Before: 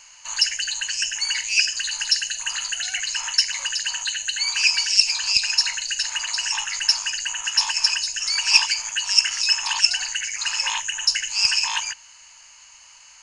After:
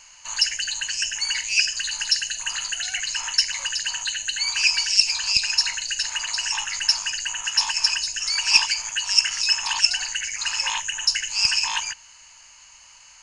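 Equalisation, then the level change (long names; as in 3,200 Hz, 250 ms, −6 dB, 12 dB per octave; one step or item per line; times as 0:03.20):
low-shelf EQ 390 Hz +6 dB
−1.0 dB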